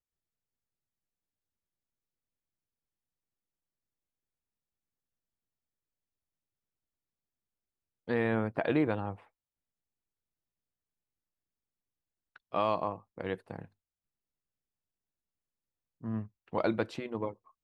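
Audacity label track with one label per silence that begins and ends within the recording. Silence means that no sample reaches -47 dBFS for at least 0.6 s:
9.160000	12.360000	silence
13.650000	16.030000	silence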